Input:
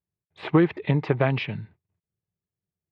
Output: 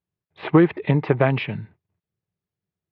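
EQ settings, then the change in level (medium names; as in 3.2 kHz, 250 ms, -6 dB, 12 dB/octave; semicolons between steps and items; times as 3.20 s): distance through air 200 m; bass shelf 86 Hz -7.5 dB; +5.0 dB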